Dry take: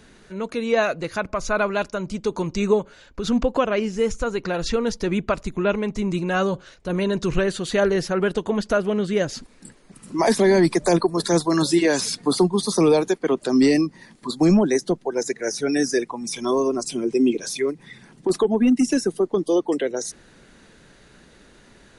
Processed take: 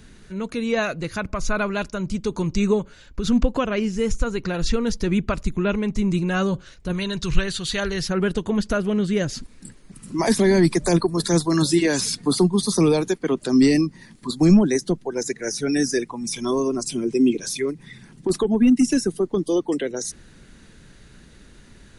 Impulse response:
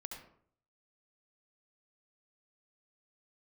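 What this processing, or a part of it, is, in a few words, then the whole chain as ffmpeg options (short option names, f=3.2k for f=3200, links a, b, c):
smiley-face EQ: -filter_complex "[0:a]asettb=1/sr,asplit=3[a][b][c];[a]atrim=end=6.924[d];[b]atrim=start=6.92:end=8.09,asetpts=PTS-STARTPTS,afade=t=in:d=0.004:c=qsin,afade=t=out:st=1.166:d=0.004:c=qsin,equalizer=f=250:t=o:w=1:g=-9,equalizer=f=500:t=o:w=1:g=-5,equalizer=f=4k:t=o:w=1:g=6[e];[c]atrim=start=8.086[f];[d][e]acrossfade=d=0.004:c1=hsin:c2=qsin[g];[g][f]acrossfade=d=0.004:c1=qsin:c2=hsin,lowshelf=f=180:g=9,equalizer=f=640:t=o:w=1.7:g=-5.5,highshelf=f=9.2k:g=4.5"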